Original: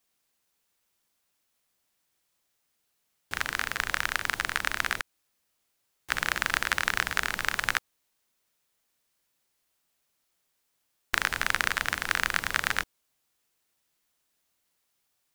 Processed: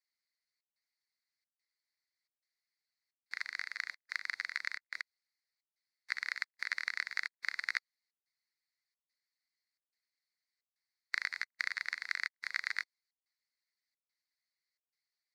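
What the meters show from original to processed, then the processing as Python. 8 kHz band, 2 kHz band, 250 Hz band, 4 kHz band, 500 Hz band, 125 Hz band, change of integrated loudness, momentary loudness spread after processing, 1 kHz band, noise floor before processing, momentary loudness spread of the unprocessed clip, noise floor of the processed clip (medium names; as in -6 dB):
-18.5 dB, -9.0 dB, under -35 dB, -11.0 dB, under -25 dB, under -40 dB, -9.5 dB, 6 LU, -18.5 dB, -77 dBFS, 5 LU, under -85 dBFS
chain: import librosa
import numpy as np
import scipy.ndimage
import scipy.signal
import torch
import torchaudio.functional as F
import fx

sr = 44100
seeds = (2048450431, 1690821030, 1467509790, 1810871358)

y = fx.step_gate(x, sr, bpm=198, pattern='xxxxxxxx..x', floor_db=-60.0, edge_ms=4.5)
y = fx.hpss(y, sr, part='harmonic', gain_db=-9)
y = fx.double_bandpass(y, sr, hz=3000.0, octaves=1.1)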